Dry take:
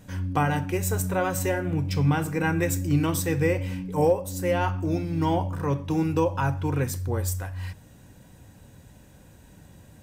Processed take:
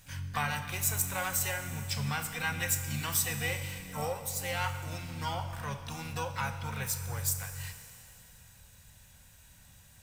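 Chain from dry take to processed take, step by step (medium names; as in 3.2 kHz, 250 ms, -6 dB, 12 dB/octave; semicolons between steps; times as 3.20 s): amplifier tone stack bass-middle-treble 10-0-10; Schroeder reverb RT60 3 s, combs from 27 ms, DRR 9 dB; harmony voices +7 st -8 dB; trim +2 dB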